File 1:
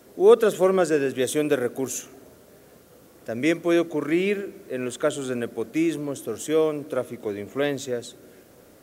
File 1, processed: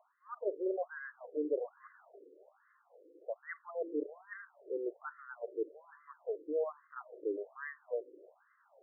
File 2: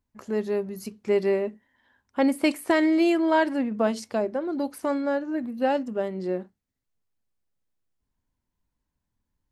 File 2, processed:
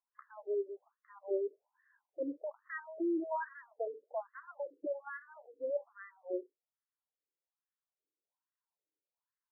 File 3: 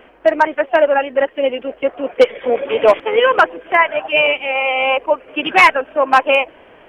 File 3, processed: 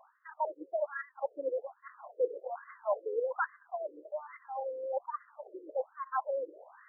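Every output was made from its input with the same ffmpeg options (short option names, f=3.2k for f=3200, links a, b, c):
-af "areverse,acompressor=threshold=-24dB:ratio=6,areverse,aeval=exprs='0.178*(cos(1*acos(clip(val(0)/0.178,-1,1)))-cos(1*PI/2))+0.00316*(cos(4*acos(clip(val(0)/0.178,-1,1)))-cos(4*PI/2))+0.00282*(cos(7*acos(clip(val(0)/0.178,-1,1)))-cos(7*PI/2))':c=same,afftfilt=real='re*between(b*sr/1024,380*pow(1500/380,0.5+0.5*sin(2*PI*1.2*pts/sr))/1.41,380*pow(1500/380,0.5+0.5*sin(2*PI*1.2*pts/sr))*1.41)':imag='im*between(b*sr/1024,380*pow(1500/380,0.5+0.5*sin(2*PI*1.2*pts/sr))/1.41,380*pow(1500/380,0.5+0.5*sin(2*PI*1.2*pts/sr))*1.41)':win_size=1024:overlap=0.75,volume=-4.5dB"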